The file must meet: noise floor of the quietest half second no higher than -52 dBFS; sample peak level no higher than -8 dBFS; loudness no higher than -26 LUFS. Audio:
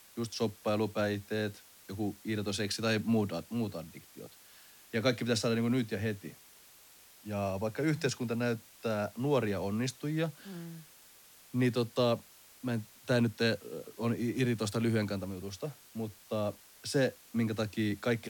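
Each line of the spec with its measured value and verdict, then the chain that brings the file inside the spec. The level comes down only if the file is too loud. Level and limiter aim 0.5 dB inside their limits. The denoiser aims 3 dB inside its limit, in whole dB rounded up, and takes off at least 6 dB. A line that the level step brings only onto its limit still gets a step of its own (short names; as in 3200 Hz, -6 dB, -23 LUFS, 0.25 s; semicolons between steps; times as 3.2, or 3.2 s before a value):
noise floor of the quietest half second -58 dBFS: OK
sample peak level -15.5 dBFS: OK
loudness -33.5 LUFS: OK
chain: none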